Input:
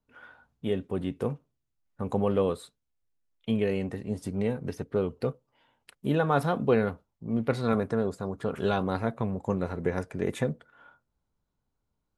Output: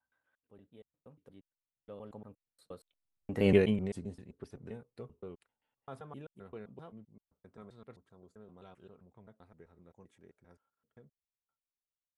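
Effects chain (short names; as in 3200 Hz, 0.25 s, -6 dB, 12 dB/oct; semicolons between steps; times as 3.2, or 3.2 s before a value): slices in reverse order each 0.124 s, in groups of 4; Doppler pass-by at 3.5, 18 m/s, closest 1.3 m; vocal rider within 4 dB 2 s; gain +8.5 dB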